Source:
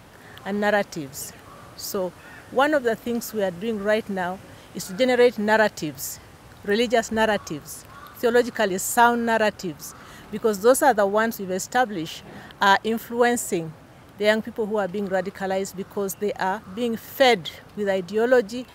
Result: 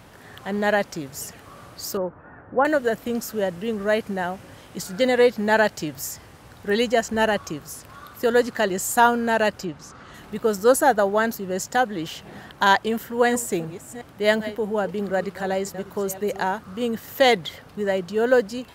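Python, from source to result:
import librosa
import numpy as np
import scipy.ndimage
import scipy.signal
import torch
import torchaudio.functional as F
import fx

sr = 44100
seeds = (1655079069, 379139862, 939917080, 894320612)

y = fx.lowpass(x, sr, hz=1500.0, slope=24, at=(1.97, 2.65))
y = fx.air_absorb(y, sr, metres=81.0, at=(9.64, 10.13), fade=0.02)
y = fx.reverse_delay(y, sr, ms=365, wet_db=-13.5, at=(12.92, 16.57))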